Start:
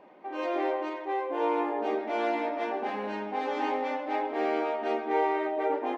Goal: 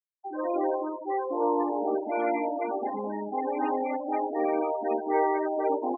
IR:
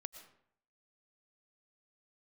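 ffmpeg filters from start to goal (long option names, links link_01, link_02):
-af "afftfilt=real='re*gte(hypot(re,im),0.0501)':imag='im*gte(hypot(re,im),0.0501)':win_size=1024:overlap=0.75,equalizer=frequency=260:width=3:gain=4,volume=1.5dB"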